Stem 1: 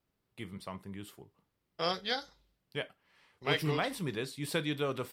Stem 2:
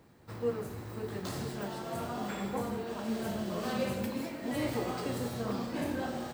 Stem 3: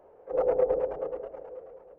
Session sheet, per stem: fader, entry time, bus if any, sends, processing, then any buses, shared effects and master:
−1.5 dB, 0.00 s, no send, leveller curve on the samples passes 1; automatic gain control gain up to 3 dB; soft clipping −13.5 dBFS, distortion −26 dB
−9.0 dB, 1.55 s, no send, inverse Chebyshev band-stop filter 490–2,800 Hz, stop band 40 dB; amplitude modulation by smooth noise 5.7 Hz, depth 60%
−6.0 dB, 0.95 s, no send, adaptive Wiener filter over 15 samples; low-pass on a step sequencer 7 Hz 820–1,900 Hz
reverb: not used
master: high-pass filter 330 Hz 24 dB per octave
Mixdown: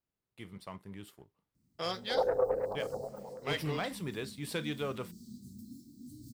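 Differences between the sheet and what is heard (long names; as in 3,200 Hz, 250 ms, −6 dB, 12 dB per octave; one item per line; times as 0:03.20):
stem 1 −1.5 dB → −9.0 dB
stem 3: entry 0.95 s → 1.80 s
master: missing high-pass filter 330 Hz 24 dB per octave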